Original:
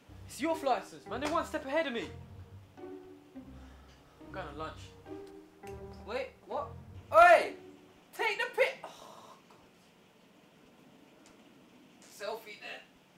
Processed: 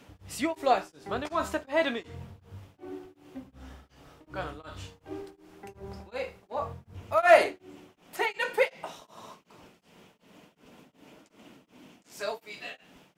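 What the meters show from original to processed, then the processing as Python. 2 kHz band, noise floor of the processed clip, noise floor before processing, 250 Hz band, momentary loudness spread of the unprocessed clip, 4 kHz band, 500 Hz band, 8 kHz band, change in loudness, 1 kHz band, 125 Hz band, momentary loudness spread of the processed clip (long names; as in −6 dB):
+2.5 dB, −67 dBFS, −62 dBFS, +3.5 dB, 23 LU, +3.5 dB, +3.0 dB, +4.5 dB, +2.0 dB, +1.0 dB, +4.0 dB, 21 LU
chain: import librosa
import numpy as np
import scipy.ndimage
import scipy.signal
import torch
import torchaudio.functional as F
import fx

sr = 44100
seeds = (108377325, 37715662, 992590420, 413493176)

y = x * np.abs(np.cos(np.pi * 2.7 * np.arange(len(x)) / sr))
y = y * librosa.db_to_amplitude(7.0)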